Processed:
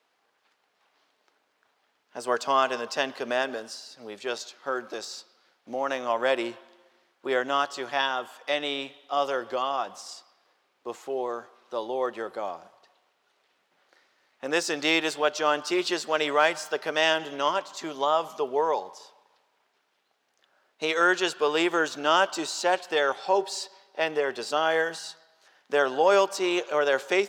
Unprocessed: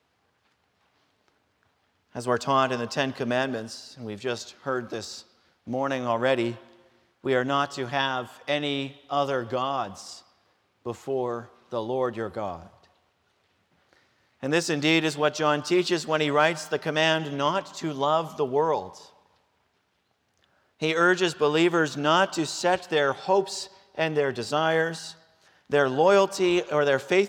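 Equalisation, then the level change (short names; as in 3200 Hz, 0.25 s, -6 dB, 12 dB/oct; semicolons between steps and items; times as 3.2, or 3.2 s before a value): HPF 400 Hz 12 dB/oct; 0.0 dB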